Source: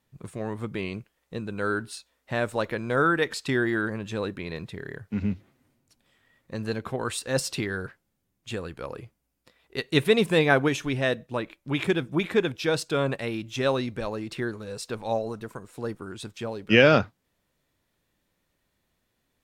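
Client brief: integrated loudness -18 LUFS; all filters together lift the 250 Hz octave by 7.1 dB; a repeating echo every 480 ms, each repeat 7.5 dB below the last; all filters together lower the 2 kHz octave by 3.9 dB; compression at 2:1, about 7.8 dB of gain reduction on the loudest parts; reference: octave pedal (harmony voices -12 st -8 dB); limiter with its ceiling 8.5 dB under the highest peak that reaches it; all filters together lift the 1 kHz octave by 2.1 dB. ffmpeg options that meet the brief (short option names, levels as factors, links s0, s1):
-filter_complex "[0:a]equalizer=f=250:t=o:g=9,equalizer=f=1000:t=o:g=5.5,equalizer=f=2000:t=o:g=-8,acompressor=threshold=0.0708:ratio=2,alimiter=limit=0.126:level=0:latency=1,aecho=1:1:480|960|1440|1920|2400:0.422|0.177|0.0744|0.0312|0.0131,asplit=2[s0][s1];[s1]asetrate=22050,aresample=44100,atempo=2,volume=0.398[s2];[s0][s2]amix=inputs=2:normalize=0,volume=3.55"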